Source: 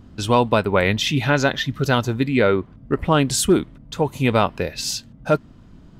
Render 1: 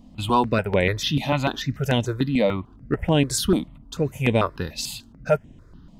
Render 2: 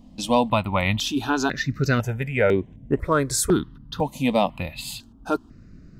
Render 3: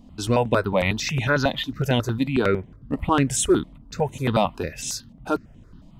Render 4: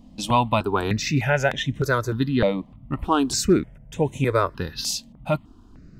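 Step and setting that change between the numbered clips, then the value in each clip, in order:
step-sequenced phaser, speed: 6.8, 2, 11, 3.3 Hertz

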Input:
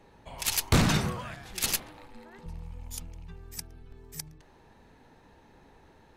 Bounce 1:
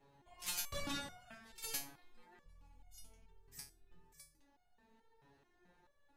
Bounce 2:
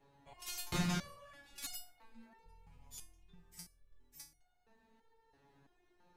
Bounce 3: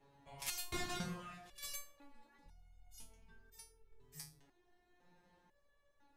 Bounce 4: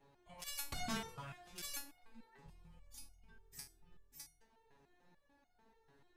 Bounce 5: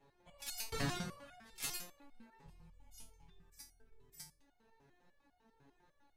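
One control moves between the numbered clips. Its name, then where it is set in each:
step-sequenced resonator, speed: 4.6, 3, 2, 6.8, 10 Hertz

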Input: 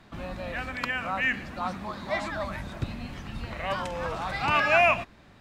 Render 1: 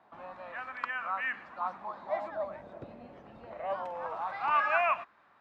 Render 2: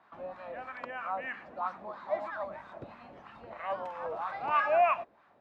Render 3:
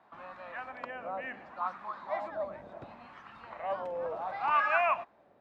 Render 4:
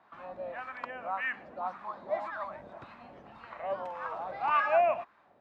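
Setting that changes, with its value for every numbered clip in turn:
LFO wah, speed: 0.25, 3.1, 0.69, 1.8 Hertz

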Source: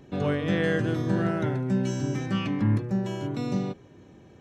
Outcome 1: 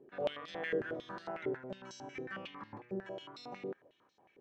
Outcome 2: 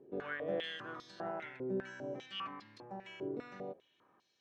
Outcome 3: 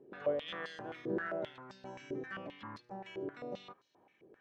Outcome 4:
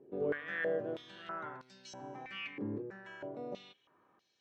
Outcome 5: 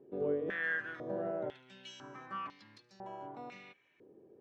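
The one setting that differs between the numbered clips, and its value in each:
band-pass on a step sequencer, speed: 11, 5, 7.6, 3.1, 2 Hertz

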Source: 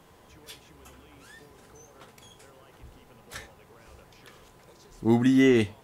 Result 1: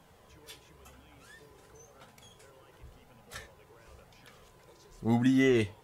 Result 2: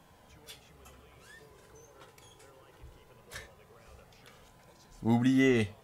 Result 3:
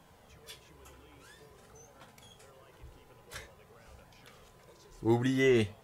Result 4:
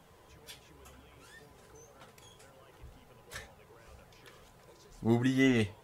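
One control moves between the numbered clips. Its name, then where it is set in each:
flanger, speed: 0.95, 0.21, 0.49, 2 Hertz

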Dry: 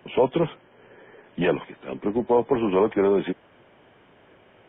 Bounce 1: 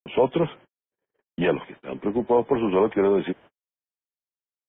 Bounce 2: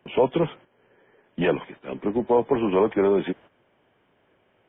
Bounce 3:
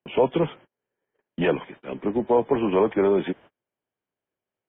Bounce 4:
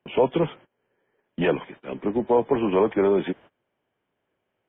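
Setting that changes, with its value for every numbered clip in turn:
noise gate, range: −60, −10, −35, −23 decibels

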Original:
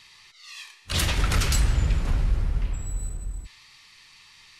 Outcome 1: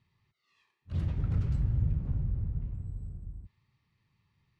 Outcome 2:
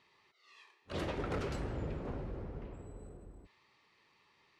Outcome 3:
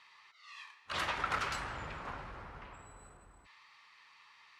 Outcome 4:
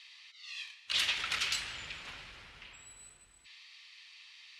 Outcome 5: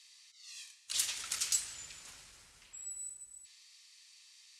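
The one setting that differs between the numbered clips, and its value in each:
resonant band-pass, frequency: 120, 430, 1,100, 3,000, 7,800 Hertz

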